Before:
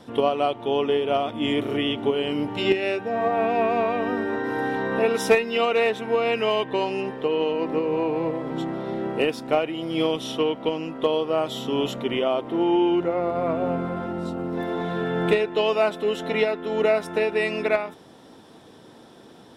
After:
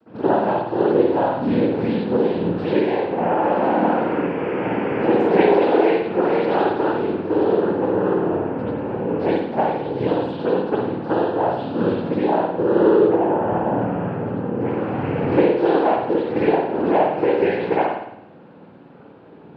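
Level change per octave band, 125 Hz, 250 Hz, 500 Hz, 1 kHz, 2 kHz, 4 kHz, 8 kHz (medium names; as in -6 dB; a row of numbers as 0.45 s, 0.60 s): +7.0 dB, +6.0 dB, +4.0 dB, +5.5 dB, -1.0 dB, -8.0 dB, under -20 dB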